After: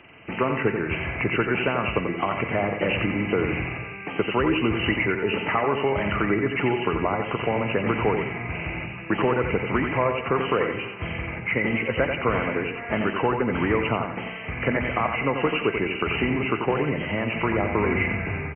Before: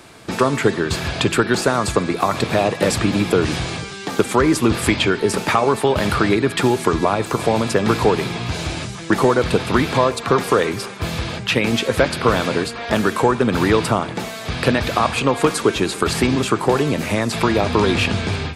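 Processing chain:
hearing-aid frequency compression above 1,900 Hz 4 to 1
repeating echo 88 ms, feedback 37%, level −6.5 dB
level −7.5 dB

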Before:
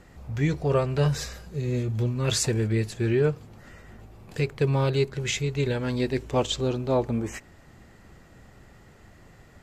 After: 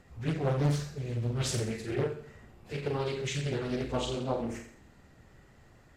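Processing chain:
flutter between parallel walls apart 11.8 metres, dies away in 0.92 s
time stretch by phase vocoder 0.62×
highs frequency-modulated by the lows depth 0.87 ms
level −4.5 dB

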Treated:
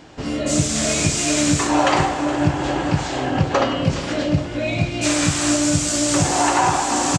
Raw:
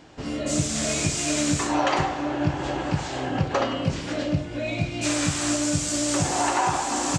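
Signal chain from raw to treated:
repeating echo 417 ms, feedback 51%, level −15 dB
level +5.5 dB

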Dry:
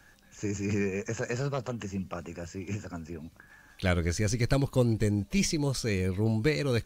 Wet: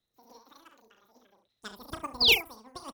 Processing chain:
sound drawn into the spectrogram fall, 0:05.16–0:05.49, 900–2,200 Hz −21 dBFS
wrong playback speed 33 rpm record played at 78 rpm
harmonic and percussive parts rebalanced harmonic −8 dB
ambience of single reflections 36 ms −7 dB, 69 ms −7 dB
expander for the loud parts 2.5 to 1, over −35 dBFS
level +1 dB

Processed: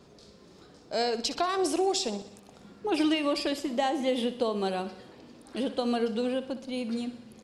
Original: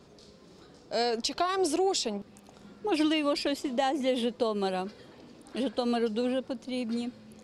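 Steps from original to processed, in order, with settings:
repeating echo 62 ms, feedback 59%, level −13.5 dB

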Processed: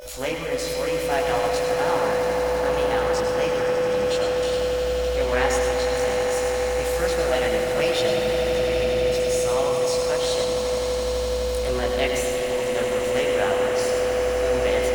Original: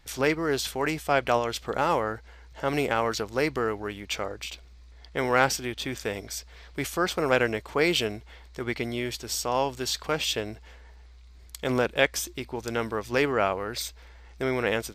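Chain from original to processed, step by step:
steady tone 500 Hz −31 dBFS
in parallel at −7 dB: bit reduction 7 bits
on the sum: formants moved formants +3 semitones
multi-voice chorus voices 6, 1 Hz, delay 21 ms, depth 3.1 ms
echo that builds up and dies away 84 ms, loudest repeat 8, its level −13 dB
on a send at −2.5 dB: convolution reverb RT60 2.8 s, pre-delay 101 ms
on the sum: level −3.5 dB

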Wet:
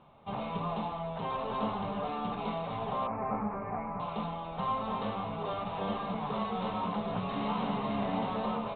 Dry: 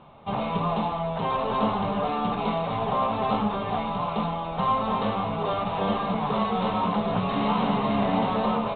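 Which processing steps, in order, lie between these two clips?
0:03.07–0:04.00: Butterworth low-pass 2,400 Hz 96 dB per octave
level −8.5 dB

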